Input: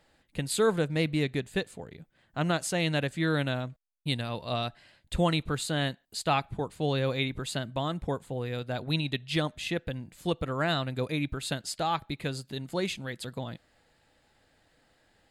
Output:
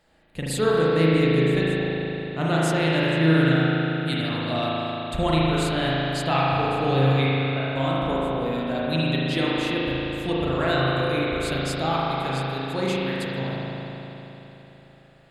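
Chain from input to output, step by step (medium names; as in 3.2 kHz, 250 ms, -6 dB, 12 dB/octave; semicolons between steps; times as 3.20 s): 7.26–7.72 s: brick-wall FIR band-pass 490–2900 Hz; spring tank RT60 3.7 s, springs 37 ms, chirp 45 ms, DRR -7 dB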